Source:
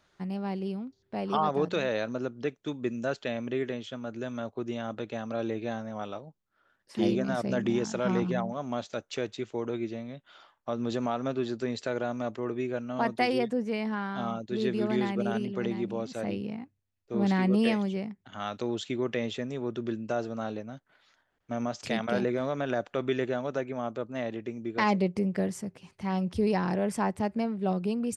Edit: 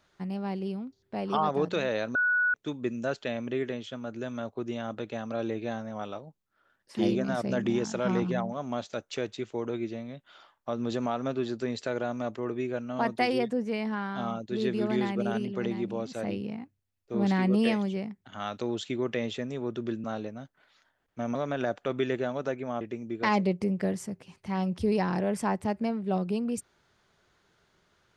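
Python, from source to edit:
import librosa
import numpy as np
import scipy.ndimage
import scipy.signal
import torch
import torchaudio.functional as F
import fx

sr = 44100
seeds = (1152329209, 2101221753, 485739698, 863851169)

y = fx.edit(x, sr, fx.bleep(start_s=2.15, length_s=0.39, hz=1470.0, db=-22.0),
    fx.cut(start_s=20.04, length_s=0.32),
    fx.cut(start_s=21.67, length_s=0.77),
    fx.cut(start_s=23.9, length_s=0.46), tone=tone)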